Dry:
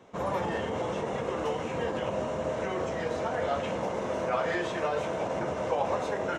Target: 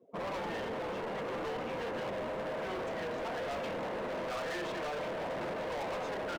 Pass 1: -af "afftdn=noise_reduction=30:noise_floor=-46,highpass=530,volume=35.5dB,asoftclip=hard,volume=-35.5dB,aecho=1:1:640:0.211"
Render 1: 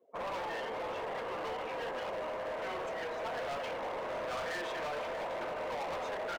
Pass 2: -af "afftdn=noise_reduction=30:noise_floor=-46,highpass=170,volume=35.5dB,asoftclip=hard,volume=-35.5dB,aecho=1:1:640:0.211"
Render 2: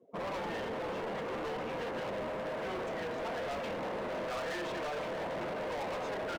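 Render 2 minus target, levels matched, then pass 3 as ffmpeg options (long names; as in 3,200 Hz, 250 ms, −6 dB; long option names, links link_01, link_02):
echo 289 ms early
-af "afftdn=noise_reduction=30:noise_floor=-46,highpass=170,volume=35.5dB,asoftclip=hard,volume=-35.5dB,aecho=1:1:929:0.211"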